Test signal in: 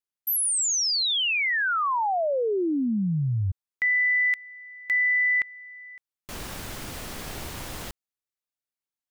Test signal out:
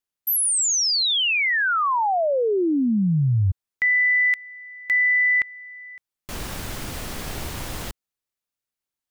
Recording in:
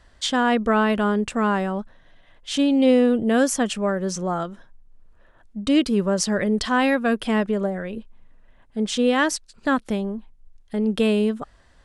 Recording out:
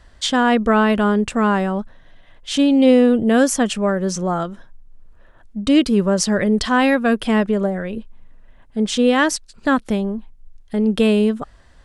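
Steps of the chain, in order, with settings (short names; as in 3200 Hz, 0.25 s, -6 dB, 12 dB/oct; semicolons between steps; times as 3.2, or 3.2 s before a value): low shelf 160 Hz +3.5 dB; gain +3.5 dB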